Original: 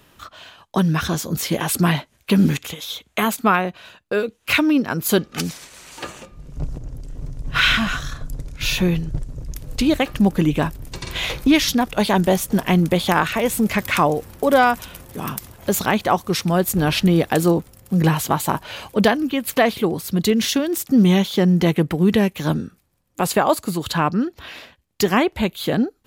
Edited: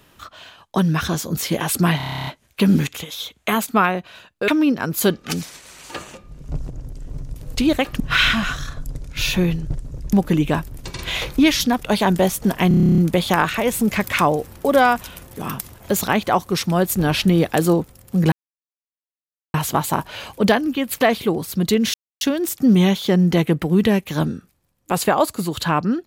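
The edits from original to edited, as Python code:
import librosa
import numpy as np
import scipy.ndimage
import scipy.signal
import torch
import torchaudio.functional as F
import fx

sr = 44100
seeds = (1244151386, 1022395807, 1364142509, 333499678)

y = fx.edit(x, sr, fx.stutter(start_s=1.97, slice_s=0.03, count=11),
    fx.cut(start_s=4.18, length_s=0.38),
    fx.move(start_s=9.57, length_s=0.64, to_s=7.44),
    fx.stutter(start_s=12.76, slice_s=0.03, count=11),
    fx.insert_silence(at_s=18.1, length_s=1.22),
    fx.insert_silence(at_s=20.5, length_s=0.27), tone=tone)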